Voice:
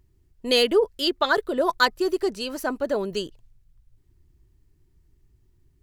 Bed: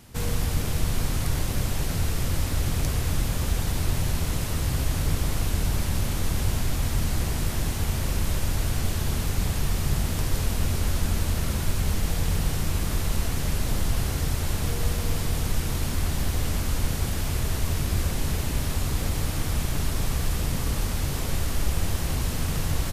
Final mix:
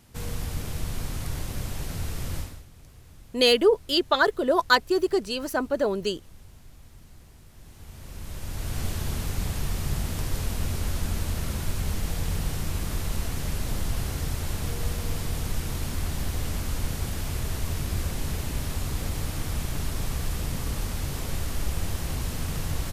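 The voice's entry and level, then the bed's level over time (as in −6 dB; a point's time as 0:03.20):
2.90 s, +0.5 dB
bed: 0:02.39 −6 dB
0:02.67 −25 dB
0:07.50 −25 dB
0:08.81 −3.5 dB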